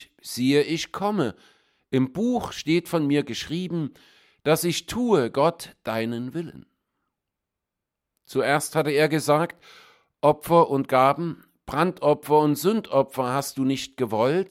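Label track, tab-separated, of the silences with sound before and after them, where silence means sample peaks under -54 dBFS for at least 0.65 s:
6.640000	8.170000	silence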